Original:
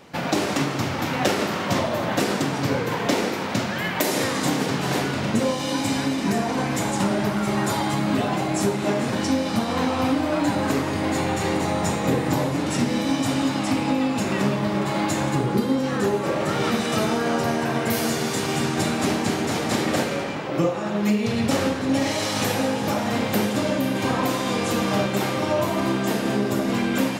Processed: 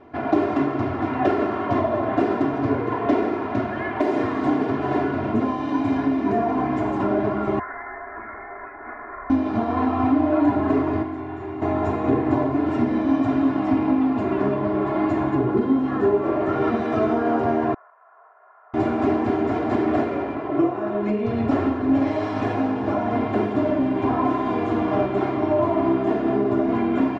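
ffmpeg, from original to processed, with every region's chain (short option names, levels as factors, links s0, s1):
-filter_complex "[0:a]asettb=1/sr,asplit=3[s0][s1][s2];[s0]atrim=end=7.594[s3];[s1]atrim=start=7.59:end=9.3,asetpts=PTS-STARTPTS,afade=t=in:d=0.004:c=qsin,afade=t=out:st=1.706:d=0.004:c=qsin,highpass=f=1100:w=0.5412,highpass=f=1100:w=1.3066,lowpass=f=2500:t=q:w=0.5098,lowpass=f=2500:t=q:w=0.6013,lowpass=f=2500:t=q:w=0.9,lowpass=f=2500:t=q:w=2.563,afreqshift=-2900[s4];[s2]atrim=start=9.296[s5];[s3][s4]acrossfade=d=0.004:c1=hsin:c2=qsin[s6];[s6][s5]acrossfade=d=0.004:c1=qsin:c2=hsin,asettb=1/sr,asplit=3[s7][s8][s9];[s7]atrim=end=11.024[s10];[s8]atrim=start=11.02:end=11.62,asetpts=PTS-STARTPTS,afade=t=in:d=0.004:c=qsin,afade=t=out:st=0.596:d=0.004:c=qsin,asplit=2[s11][s12];[s12]adelay=31,volume=0.596[s13];[s11][s13]amix=inputs=2:normalize=0,atrim=end_sample=26460,acrossover=split=230|2400[s14][s15][s16];[s14]acompressor=threshold=0.0112:ratio=4[s17];[s15]acompressor=threshold=0.0282:ratio=4[s18];[s16]acompressor=threshold=0.00398:ratio=4[s19];[s17][s18][s19]amix=inputs=3:normalize=0,equalizer=f=530:w=0.73:g=-4.5[s20];[s9]atrim=start=11.616[s21];[s10][s20]acrossfade=d=0.004:c1=hsin:c2=qsin[s22];[s22][s21]acrossfade=d=0.004:c1=qsin:c2=hsin,asettb=1/sr,asplit=3[s23][s24][s25];[s23]atrim=end=17.744[s26];[s24]atrim=start=17.74:end=18.74,asetpts=PTS-STARTPTS,afade=t=in:d=0.004:c=qsin,afade=t=out:st=0.996:d=0.004:c=qsin,aeval=exprs='(mod(13.3*val(0)+1,2)-1)/13.3':c=same,asuperpass=centerf=840:order=8:qfactor=0.87,aderivative[s27];[s25]atrim=start=18.736[s28];[s26][s27]acrossfade=d=0.004:c1=hsin:c2=qsin[s29];[s29][s28]acrossfade=d=0.004:c1=qsin:c2=hsin,lowpass=1200,aecho=1:1:2.9:0.99"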